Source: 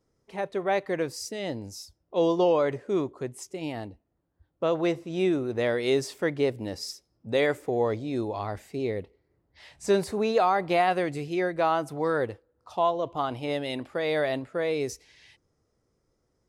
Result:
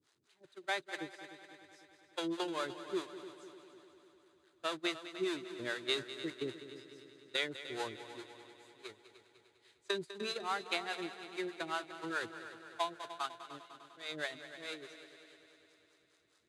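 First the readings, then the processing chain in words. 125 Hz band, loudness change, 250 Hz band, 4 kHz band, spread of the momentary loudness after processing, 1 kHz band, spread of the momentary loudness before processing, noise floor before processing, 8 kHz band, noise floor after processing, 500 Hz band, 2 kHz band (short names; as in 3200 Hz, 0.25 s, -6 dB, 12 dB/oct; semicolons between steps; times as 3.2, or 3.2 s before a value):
-21.0 dB, -12.0 dB, -14.0 dB, -2.5 dB, 19 LU, -13.5 dB, 13 LU, -75 dBFS, -10.0 dB, -73 dBFS, -17.0 dB, -6.5 dB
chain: zero-crossing step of -28 dBFS; notch 5500 Hz, Q 8.9; gate -22 dBFS, range -37 dB; tilt shelf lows -4.5 dB, about 940 Hz; compressor, threshold -29 dBFS, peak gain reduction 11 dB; harmonic tremolo 4.8 Hz, depth 100%, crossover 420 Hz; speaker cabinet 120–9800 Hz, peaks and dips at 190 Hz -6 dB, 350 Hz +6 dB, 510 Hz -9 dB, 740 Hz -4 dB, 1500 Hz +5 dB, 3800 Hz +7 dB; multi-head echo 0.1 s, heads second and third, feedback 61%, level -13.5 dB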